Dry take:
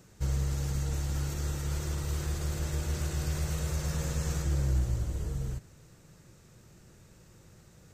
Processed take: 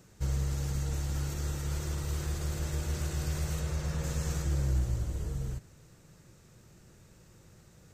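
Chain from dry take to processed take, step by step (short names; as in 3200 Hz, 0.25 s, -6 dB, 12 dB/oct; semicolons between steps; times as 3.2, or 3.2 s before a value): 3.6–4.03 high shelf 8400 Hz -> 5200 Hz -8.5 dB; gain -1 dB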